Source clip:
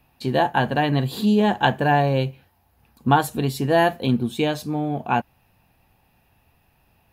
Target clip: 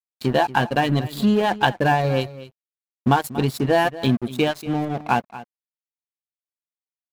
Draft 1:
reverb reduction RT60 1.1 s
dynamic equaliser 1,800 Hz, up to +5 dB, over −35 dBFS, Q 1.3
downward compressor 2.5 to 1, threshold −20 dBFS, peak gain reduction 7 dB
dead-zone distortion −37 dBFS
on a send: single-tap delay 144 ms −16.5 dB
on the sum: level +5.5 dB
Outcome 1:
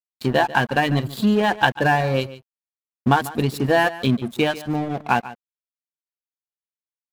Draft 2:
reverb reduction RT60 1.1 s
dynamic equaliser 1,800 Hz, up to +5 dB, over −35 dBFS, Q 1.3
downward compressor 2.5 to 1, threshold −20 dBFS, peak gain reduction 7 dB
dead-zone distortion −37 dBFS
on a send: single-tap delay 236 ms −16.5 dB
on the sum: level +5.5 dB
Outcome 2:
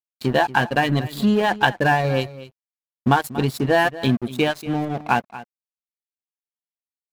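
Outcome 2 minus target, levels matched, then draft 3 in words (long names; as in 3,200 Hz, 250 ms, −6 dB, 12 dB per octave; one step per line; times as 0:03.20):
2,000 Hz band +3.0 dB
reverb reduction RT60 1.1 s
downward compressor 2.5 to 1, threshold −20 dBFS, peak gain reduction 6.5 dB
dead-zone distortion −37 dBFS
on a send: single-tap delay 236 ms −16.5 dB
on the sum: level +5.5 dB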